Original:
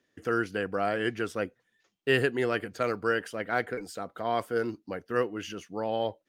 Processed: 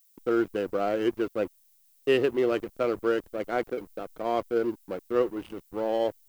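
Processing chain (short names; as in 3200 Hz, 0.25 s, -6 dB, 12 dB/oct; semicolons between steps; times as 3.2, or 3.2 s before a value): speaker cabinet 110–4400 Hz, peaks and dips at 130 Hz -7 dB, 350 Hz +7 dB, 550 Hz +5 dB, 1700 Hz -10 dB; backlash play -33 dBFS; added noise violet -63 dBFS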